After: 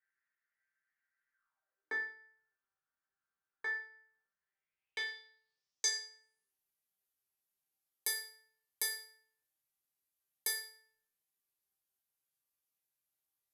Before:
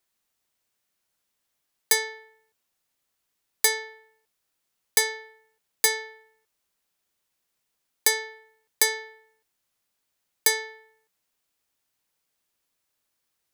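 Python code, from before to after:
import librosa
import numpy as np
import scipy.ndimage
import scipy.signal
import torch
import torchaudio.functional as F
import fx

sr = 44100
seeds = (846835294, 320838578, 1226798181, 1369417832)

y = fx.filter_sweep_highpass(x, sr, from_hz=1900.0, to_hz=65.0, start_s=1.29, end_s=2.39, q=7.6)
y = fx.quant_companded(y, sr, bits=8)
y = fx.filter_sweep_lowpass(y, sr, from_hz=1500.0, to_hz=12000.0, start_s=4.27, end_s=6.55, q=5.5)
y = fx.resonator_bank(y, sr, root=48, chord='minor', decay_s=0.43)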